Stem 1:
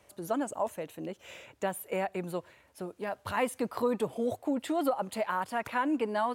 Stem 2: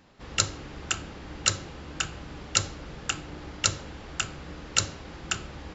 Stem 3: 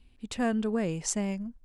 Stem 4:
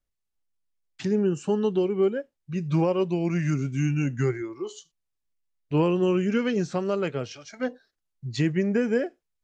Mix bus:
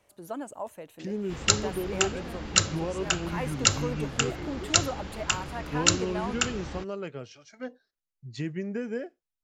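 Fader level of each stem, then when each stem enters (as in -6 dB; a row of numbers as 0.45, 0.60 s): -5.0, +2.5, -18.5, -9.0 dB; 0.00, 1.10, 1.85, 0.00 s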